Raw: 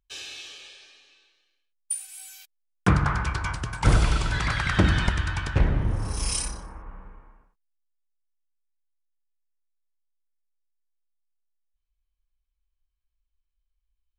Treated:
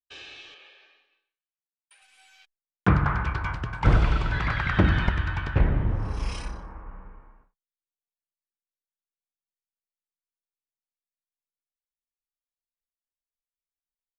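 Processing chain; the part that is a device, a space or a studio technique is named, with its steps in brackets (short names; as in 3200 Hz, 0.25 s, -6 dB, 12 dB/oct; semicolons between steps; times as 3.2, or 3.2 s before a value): hearing-loss simulation (LPF 2700 Hz 12 dB/oct; expander -55 dBFS); 0.54–2.02 tone controls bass -14 dB, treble -9 dB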